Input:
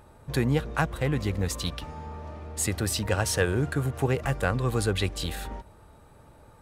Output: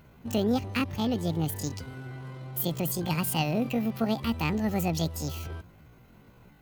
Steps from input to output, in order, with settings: graphic EQ 500/1000/4000 Hz -5/-7/-5 dB; pitch shift +9 st

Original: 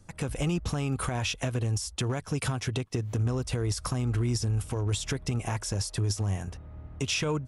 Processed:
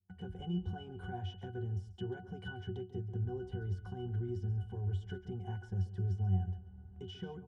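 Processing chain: pitch-class resonator F#, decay 0.19 s; delay 137 ms -14.5 dB; gate with hold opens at -48 dBFS; trim +2 dB

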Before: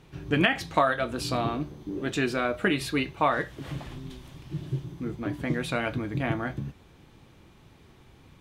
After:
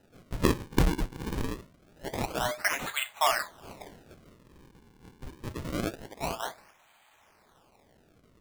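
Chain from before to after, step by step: Chebyshev high-pass 620 Hz, order 6; resonant high shelf 6.8 kHz -11 dB, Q 1.5; decimation with a swept rate 39×, swing 160% 0.25 Hz

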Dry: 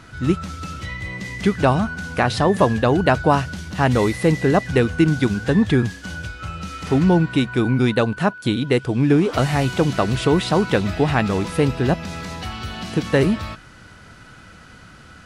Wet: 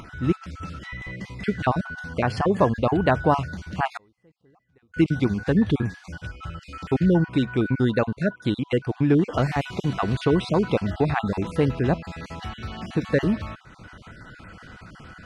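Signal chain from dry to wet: random holes in the spectrogram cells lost 30%; low-pass 2.8 kHz 6 dB/octave; upward compressor, threshold -33 dBFS; 3.97–4.94 s: inverted gate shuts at -30 dBFS, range -38 dB; trim -3 dB

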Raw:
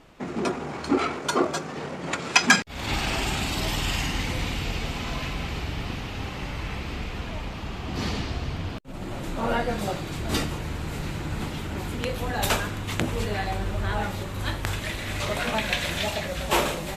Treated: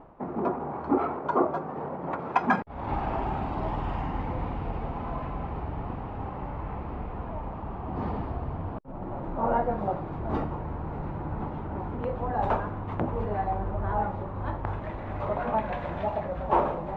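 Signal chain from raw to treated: reverse; upward compressor, threshold -31 dBFS; reverse; resonant low-pass 920 Hz, resonance Q 2.1; trim -3 dB

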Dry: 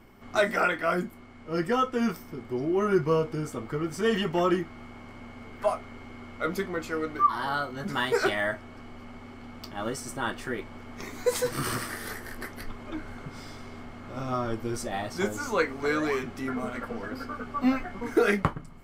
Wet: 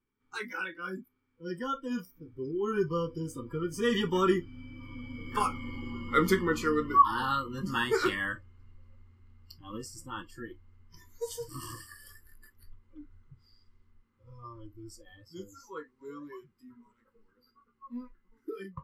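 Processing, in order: Doppler pass-by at 5.82 s, 18 m/s, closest 16 m; Butterworth band-stop 660 Hz, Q 1.7; spectral noise reduction 20 dB; trim +6.5 dB

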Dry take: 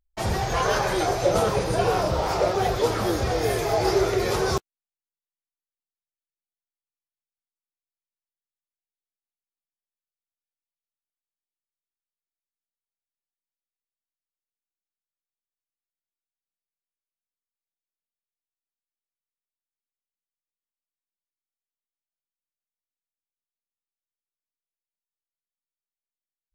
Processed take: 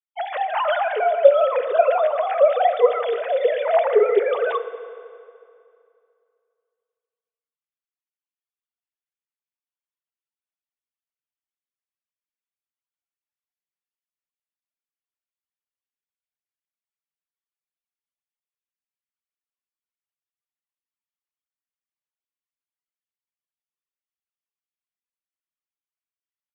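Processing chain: formants replaced by sine waves; high-pass 360 Hz 12 dB/octave; FDN reverb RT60 2.5 s, low-frequency decay 0.8×, high-frequency decay 0.8×, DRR 10 dB; trim +4.5 dB

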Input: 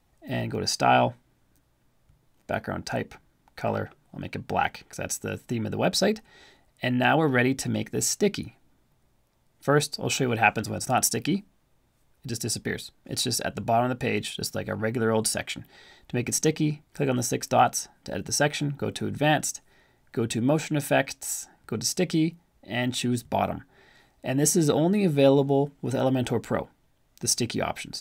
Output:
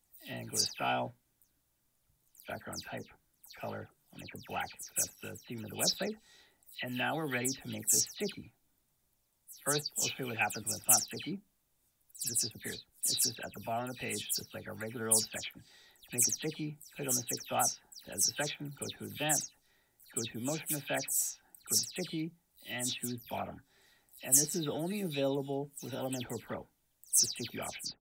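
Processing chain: delay that grows with frequency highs early, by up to 138 ms; pre-emphasis filter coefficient 0.8

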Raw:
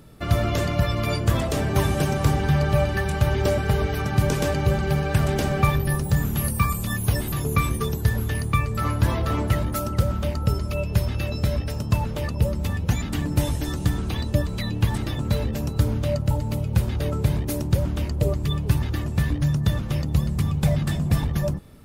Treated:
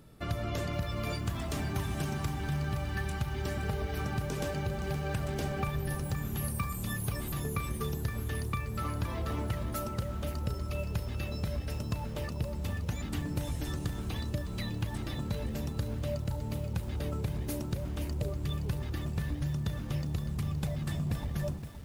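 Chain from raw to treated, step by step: 1.12–3.62 s: peaking EQ 520 Hz -13.5 dB 0.44 oct; compression, threshold -22 dBFS, peak gain reduction 9.5 dB; bit-crushed delay 519 ms, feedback 35%, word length 7-bit, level -9.5 dB; trim -7.5 dB

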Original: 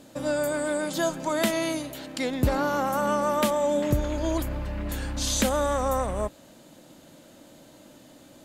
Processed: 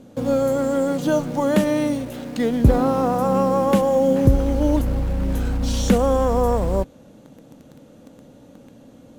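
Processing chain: tilt shelf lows +7 dB, about 1.1 kHz; in parallel at -8 dB: bit crusher 6-bit; on the sum: speed mistake 48 kHz file played as 44.1 kHz

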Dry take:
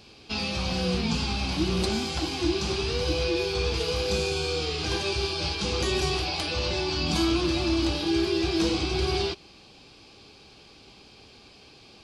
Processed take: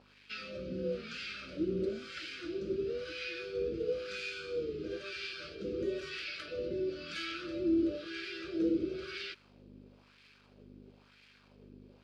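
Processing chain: elliptic band-stop 590–1300 Hz, stop band 40 dB; hum 50 Hz, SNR 10 dB; in parallel at -9 dB: bit crusher 7-bit; on the sum: wah-wah 1 Hz 330–2000 Hz, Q 2; trim -3.5 dB

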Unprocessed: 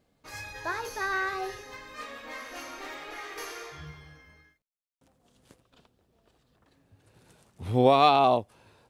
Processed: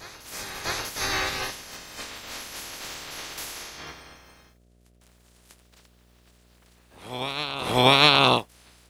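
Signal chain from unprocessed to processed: spectral peaks clipped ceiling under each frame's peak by 27 dB; mains buzz 60 Hz, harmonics 12, -62 dBFS -6 dB/octave; reverse echo 645 ms -14 dB; trim +3 dB

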